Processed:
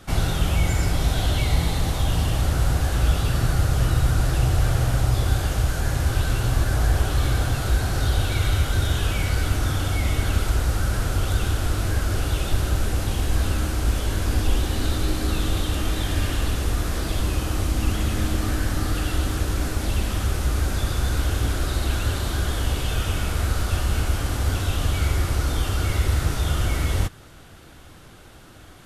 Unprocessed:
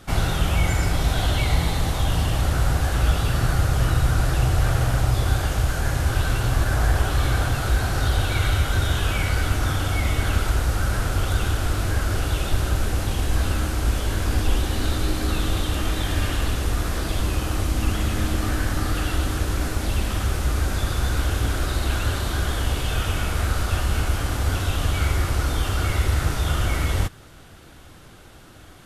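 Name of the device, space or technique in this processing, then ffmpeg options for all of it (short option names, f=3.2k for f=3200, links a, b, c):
one-band saturation: -filter_complex "[0:a]acrossover=split=600|2900[a][b][c];[b]asoftclip=type=tanh:threshold=-32dB[d];[a][d][c]amix=inputs=3:normalize=0"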